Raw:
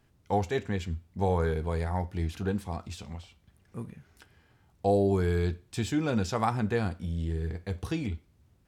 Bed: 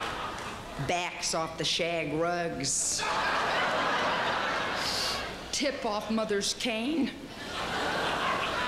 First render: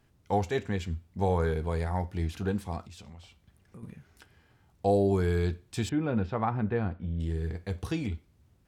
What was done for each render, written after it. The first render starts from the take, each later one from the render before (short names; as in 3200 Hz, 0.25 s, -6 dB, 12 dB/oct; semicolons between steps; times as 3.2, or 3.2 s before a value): 2.85–3.83 compressor, threshold -44 dBFS; 5.89–7.2 air absorption 470 m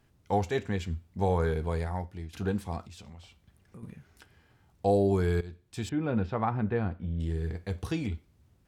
1.72–2.33 fade out, to -13.5 dB; 5.41–6.11 fade in, from -18 dB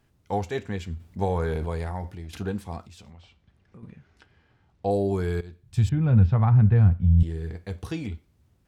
0.97–2.43 transient shaper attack +3 dB, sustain +9 dB; 3.11–4.91 LPF 4700 Hz; 5.63–7.23 resonant low shelf 200 Hz +14 dB, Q 1.5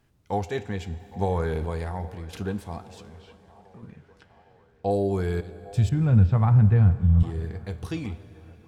band-limited delay 0.809 s, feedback 64%, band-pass 890 Hz, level -19.5 dB; plate-style reverb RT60 4.2 s, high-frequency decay 0.95×, DRR 15 dB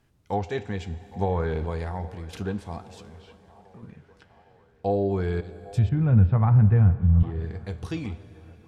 treble ducked by the level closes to 2500 Hz, closed at -19 dBFS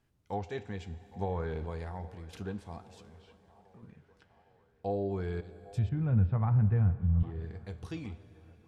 gain -8.5 dB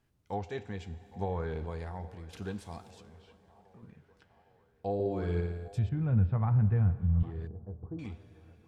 2.42–2.91 high shelf 3200 Hz +10.5 dB; 4.94–5.68 flutter echo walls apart 9.9 m, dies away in 0.92 s; 7.47–7.99 Gaussian blur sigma 10 samples